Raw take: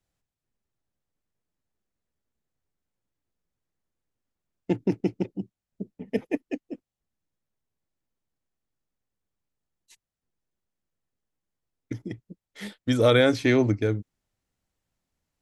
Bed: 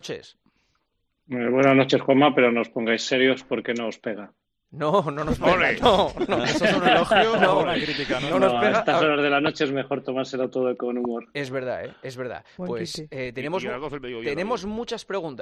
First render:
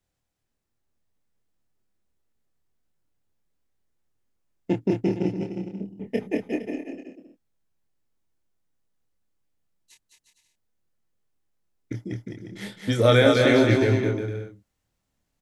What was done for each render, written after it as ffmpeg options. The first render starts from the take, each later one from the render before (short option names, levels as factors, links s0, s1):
-filter_complex "[0:a]asplit=2[s0][s1];[s1]adelay=26,volume=0.596[s2];[s0][s2]amix=inputs=2:normalize=0,aecho=1:1:210|357|459.9|531.9|582.4:0.631|0.398|0.251|0.158|0.1"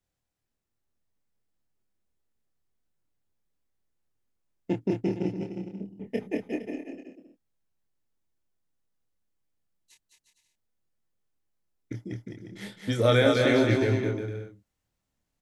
-af "volume=0.631"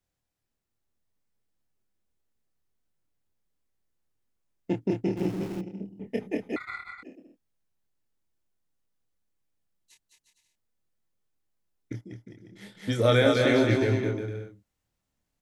-filter_complex "[0:a]asettb=1/sr,asplit=3[s0][s1][s2];[s0]atrim=end=5.174[s3];[s1]atrim=start=5.17:end=5.61,asetpts=PTS-STARTPTS,afade=t=in:d=0.004:c=qsin,afade=t=out:st=0.436:d=0.004:c=qsin,aeval=exprs='val(0)+0.5*0.0133*sgn(val(0))':c=same[s4];[s2]atrim=start=5.606[s5];[s3][s4]acrossfade=d=0.004:c1=hsin:c2=qsin[s6];[s6][s5]acrossfade=d=0.004:c1=qsin:c2=hsin,asettb=1/sr,asplit=3[s7][s8][s9];[s7]atrim=end=6.564[s10];[s8]atrim=start=6.56:end=7.03,asetpts=PTS-STARTPTS,afade=t=in:d=0.004:c=qsin,afade=t=out:st=0.466:d=0.004:c=qsin,aeval=exprs='val(0)*sin(2*PI*1700*n/s)':c=same[s11];[s9]atrim=start=7.026[s12];[s10][s11]acrossfade=d=0.004:c1=hsin:c2=qsin[s13];[s13][s12]acrossfade=d=0.004:c1=qsin:c2=hsin,asplit=3[s14][s15][s16];[s14]atrim=end=12.012[s17];[s15]atrim=start=12.008:end=12.752,asetpts=PTS-STARTPTS,volume=0.473[s18];[s16]atrim=start=12.748[s19];[s17][s18]acrossfade=d=0.004:c1=hsin:c2=hsin[s20];[s20][s19]acrossfade=d=0.004:c1=hsin:c2=hsin"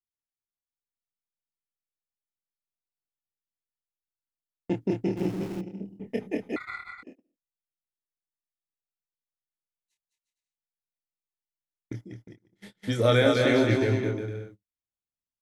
-af "agate=range=0.0708:threshold=0.00501:ratio=16:detection=peak"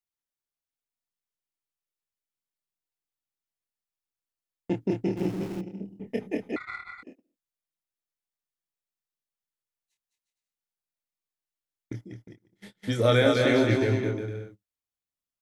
-filter_complex "[0:a]asettb=1/sr,asplit=3[s0][s1][s2];[s0]atrim=end=6.514[s3];[s1]atrim=start=6.51:end=6.95,asetpts=PTS-STARTPTS,afade=t=in:d=0.004:c=qsin,afade=t=out:st=0.436:d=0.004:c=qsin,adynamicsmooth=sensitivity=7.5:basefreq=7700[s4];[s2]atrim=start=6.946[s5];[s3][s4]acrossfade=d=0.004:c1=hsin:c2=qsin[s6];[s6][s5]acrossfade=d=0.004:c1=qsin:c2=hsin"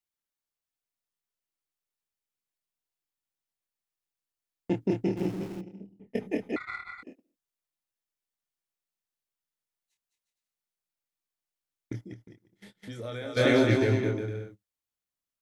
-filter_complex "[0:a]asplit=3[s0][s1][s2];[s0]afade=t=out:st=12.13:d=0.02[s3];[s1]acompressor=threshold=0.00398:ratio=2:attack=3.2:release=140:knee=1:detection=peak,afade=t=in:st=12.13:d=0.02,afade=t=out:st=13.36:d=0.02[s4];[s2]afade=t=in:st=13.36:d=0.02[s5];[s3][s4][s5]amix=inputs=3:normalize=0,asplit=2[s6][s7];[s6]atrim=end=6.15,asetpts=PTS-STARTPTS,afade=t=out:st=5.02:d=1.13:silence=0.149624[s8];[s7]atrim=start=6.15,asetpts=PTS-STARTPTS,afade=t=in:d=0.004:c=hsin:silence=0.149624[s9];[s8][s9]concat=n=2:v=0:a=1"